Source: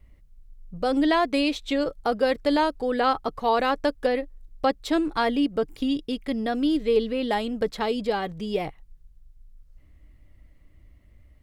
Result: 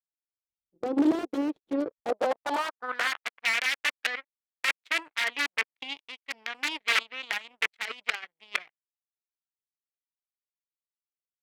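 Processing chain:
wrap-around overflow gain 16 dB
power curve on the samples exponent 3
band-pass filter sweep 360 Hz → 2,200 Hz, 0:01.78–0:03.29
level +8.5 dB

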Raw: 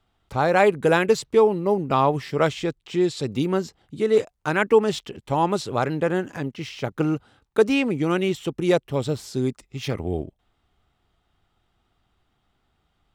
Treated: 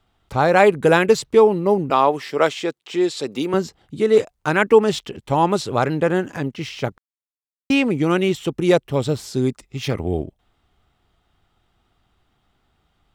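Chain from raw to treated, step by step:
0:01.90–0:03.54: high-pass filter 310 Hz 12 dB per octave
0:06.98–0:07.70: silence
level +4 dB

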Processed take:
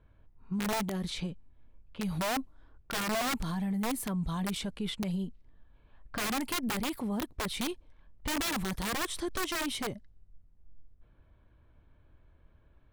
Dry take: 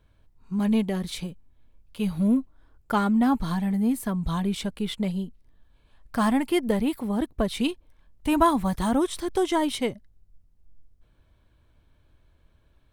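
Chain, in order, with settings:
low-pass that shuts in the quiet parts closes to 2,100 Hz, open at −23.5 dBFS
wrap-around overflow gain 18 dB
brickwall limiter −27 dBFS, peak gain reduction 9 dB

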